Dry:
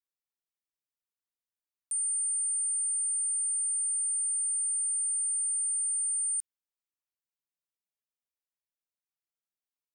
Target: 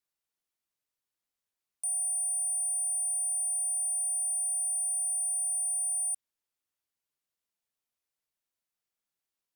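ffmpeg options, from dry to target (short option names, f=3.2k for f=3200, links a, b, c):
-af "asoftclip=type=tanh:threshold=-34dB,asetrate=45938,aresample=44100,volume=5dB"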